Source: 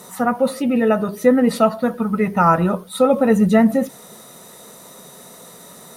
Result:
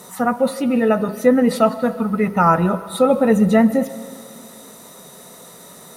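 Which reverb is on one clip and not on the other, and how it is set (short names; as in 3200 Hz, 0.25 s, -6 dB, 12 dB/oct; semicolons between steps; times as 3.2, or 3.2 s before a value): plate-style reverb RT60 2.3 s, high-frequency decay 0.8×, pre-delay 0.105 s, DRR 16 dB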